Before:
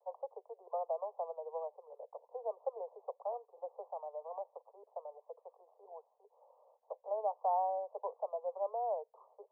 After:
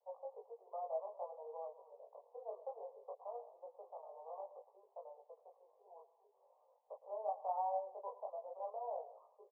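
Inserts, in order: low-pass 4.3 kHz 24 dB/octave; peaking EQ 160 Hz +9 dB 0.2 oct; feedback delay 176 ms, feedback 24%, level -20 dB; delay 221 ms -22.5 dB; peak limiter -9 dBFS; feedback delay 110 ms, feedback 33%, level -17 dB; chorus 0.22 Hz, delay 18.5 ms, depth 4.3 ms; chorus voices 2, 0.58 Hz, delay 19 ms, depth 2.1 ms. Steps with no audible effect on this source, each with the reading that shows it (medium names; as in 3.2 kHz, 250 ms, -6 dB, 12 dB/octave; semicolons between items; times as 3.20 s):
low-pass 4.3 kHz: input has nothing above 1.2 kHz; peaking EQ 160 Hz: input has nothing below 360 Hz; peak limiter -9 dBFS: peak at its input -22.5 dBFS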